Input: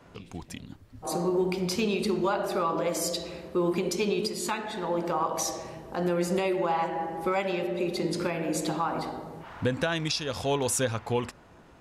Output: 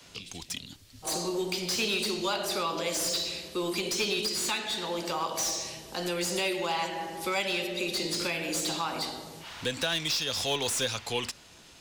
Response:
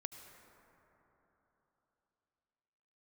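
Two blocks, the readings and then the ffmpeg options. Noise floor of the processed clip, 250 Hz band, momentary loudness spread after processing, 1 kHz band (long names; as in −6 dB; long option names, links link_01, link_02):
−54 dBFS, −6.0 dB, 10 LU, −4.0 dB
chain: -filter_complex "[0:a]acrossover=split=280|430|3300[link_01][link_02][link_03][link_04];[link_01]asoftclip=type=tanh:threshold=-35dB[link_05];[link_04]asplit=2[link_06][link_07];[link_07]highpass=frequency=720:poles=1,volume=31dB,asoftclip=type=tanh:threshold=-16.5dB[link_08];[link_06][link_08]amix=inputs=2:normalize=0,lowpass=frequency=5300:poles=1,volume=-6dB[link_09];[link_05][link_02][link_03][link_09]amix=inputs=4:normalize=0,volume=-4.5dB"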